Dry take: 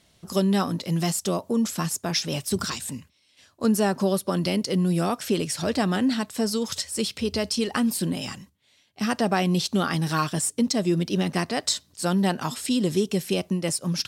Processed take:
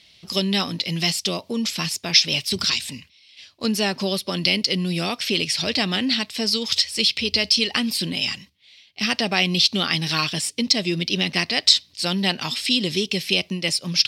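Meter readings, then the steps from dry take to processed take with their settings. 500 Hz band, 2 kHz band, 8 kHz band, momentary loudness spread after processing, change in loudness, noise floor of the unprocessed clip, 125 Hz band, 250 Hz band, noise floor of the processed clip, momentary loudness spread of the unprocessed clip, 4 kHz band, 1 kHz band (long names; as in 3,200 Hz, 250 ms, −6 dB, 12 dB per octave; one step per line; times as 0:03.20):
−2.0 dB, +8.5 dB, +1.0 dB, 8 LU, +4.5 dB, −63 dBFS, −2.0 dB, −2.0 dB, −55 dBFS, 5 LU, +12.5 dB, −2.0 dB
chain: flat-topped bell 3,300 Hz +15 dB
level −2 dB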